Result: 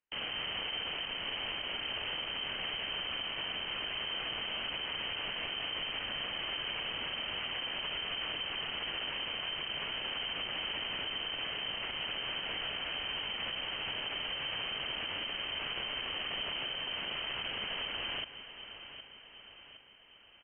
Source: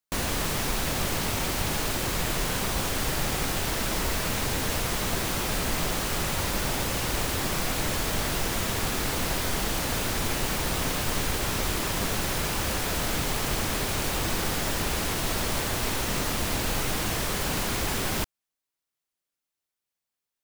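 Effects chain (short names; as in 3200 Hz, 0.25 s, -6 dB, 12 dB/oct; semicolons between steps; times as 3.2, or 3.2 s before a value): rattling part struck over -32 dBFS, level -25 dBFS; inverted band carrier 3100 Hz; feedback echo 0.763 s, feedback 53%, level -22 dB; compressor 6:1, threshold -31 dBFS, peak gain reduction 9.5 dB; limiter -29 dBFS, peak gain reduction 10 dB; echo 0.173 s -14 dB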